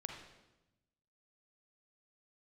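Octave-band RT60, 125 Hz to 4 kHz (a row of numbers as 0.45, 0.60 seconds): 1.5, 1.3, 1.0, 0.95, 0.85, 0.85 seconds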